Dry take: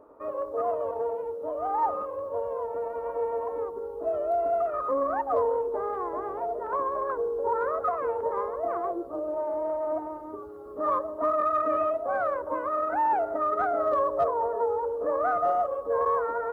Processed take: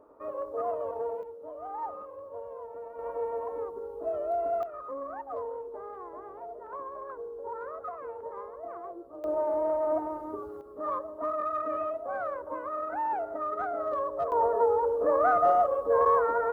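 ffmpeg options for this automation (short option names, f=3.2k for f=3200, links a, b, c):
-af "asetnsamples=n=441:p=0,asendcmd='1.23 volume volume -10dB;2.99 volume volume -3.5dB;4.63 volume volume -11dB;9.24 volume volume 1.5dB;10.61 volume volume -6dB;14.32 volume volume 2.5dB',volume=-3.5dB"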